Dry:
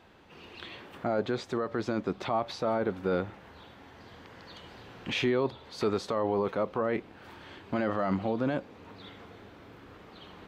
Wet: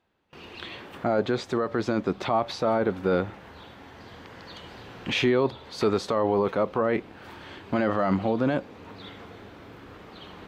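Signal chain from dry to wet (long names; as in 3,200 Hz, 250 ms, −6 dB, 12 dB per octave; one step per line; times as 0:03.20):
noise gate with hold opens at −43 dBFS
level +5 dB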